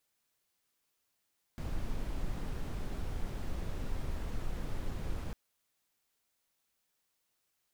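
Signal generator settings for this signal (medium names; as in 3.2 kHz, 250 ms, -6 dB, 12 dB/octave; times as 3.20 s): noise brown, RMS -35 dBFS 3.75 s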